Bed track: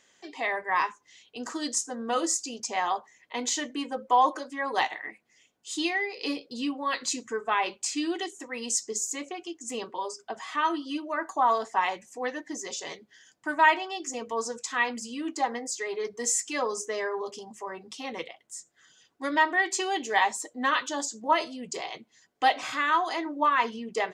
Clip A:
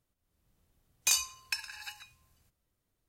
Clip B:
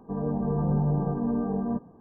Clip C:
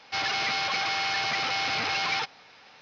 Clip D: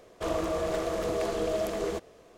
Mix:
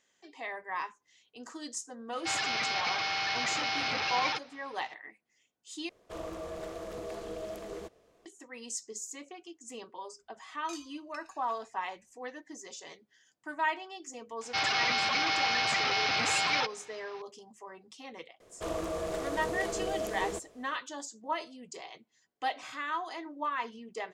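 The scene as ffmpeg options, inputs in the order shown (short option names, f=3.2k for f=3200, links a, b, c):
-filter_complex "[3:a]asplit=2[a][b];[4:a]asplit=2[c][d];[0:a]volume=-10dB[e];[1:a]lowpass=6.1k[f];[d]equalizer=f=9k:w=0.93:g=4[g];[e]asplit=2[h][i];[h]atrim=end=5.894[j];[c]atrim=end=2.37,asetpts=PTS-STARTPTS,volume=-10.5dB[k];[i]atrim=start=8.256[l];[a]atrim=end=2.81,asetpts=PTS-STARTPTS,volume=-4dB,afade=t=in:d=0.004:c=hsin,afade=t=out:st=2.806:d=0.004:c=hsin,adelay=2130[m];[f]atrim=end=3.08,asetpts=PTS-STARTPTS,volume=-17dB,afade=t=in:d=0.004:c=hsin,afade=t=out:st=3.076:d=0.004:c=hsin,adelay=424242S[n];[b]atrim=end=2.81,asetpts=PTS-STARTPTS,volume=-1dB,afade=t=in:d=0.004:c=hsin,afade=t=out:st=2.806:d=0.004:c=hsin,adelay=14410[o];[g]atrim=end=2.37,asetpts=PTS-STARTPTS,volume=-5dB,afade=t=in:d=0.004:c=hsin,afade=t=out:st=2.366:d=0.004:c=hsin,adelay=18400[p];[j][k]acrossfade=d=0.004:c1=hsin:c2=hsin[q];[q][l]acrossfade=d=0.004:c1=hsin:c2=hsin[r];[r][m][n][o][p]amix=inputs=5:normalize=0"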